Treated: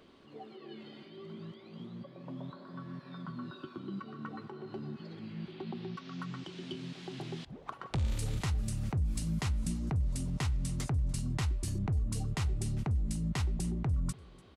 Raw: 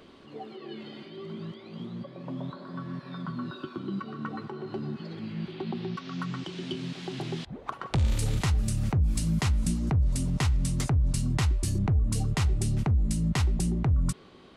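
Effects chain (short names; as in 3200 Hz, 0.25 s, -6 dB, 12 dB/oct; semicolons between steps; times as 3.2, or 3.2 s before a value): feedback echo 0.293 s, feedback 33%, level -24 dB; gain -7 dB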